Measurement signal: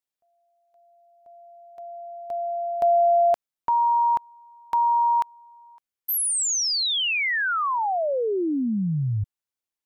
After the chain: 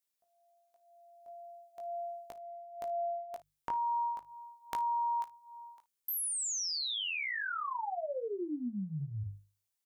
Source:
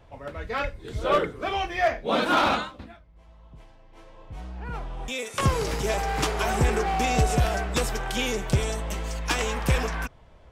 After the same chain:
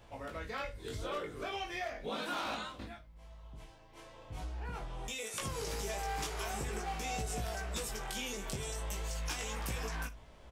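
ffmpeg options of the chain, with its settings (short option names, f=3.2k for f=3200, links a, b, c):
-filter_complex "[0:a]highshelf=f=4.1k:g=10,bandreject=f=50:t=h:w=6,bandreject=f=100:t=h:w=6,bandreject=f=150:t=h:w=6,acompressor=threshold=-35dB:ratio=4:attack=6.3:release=223:knee=1:detection=peak,flanger=delay=18:depth=2.3:speed=0.4,asplit=2[a][b];[b]aecho=0:1:33|56:0.133|0.126[c];[a][c]amix=inputs=2:normalize=0"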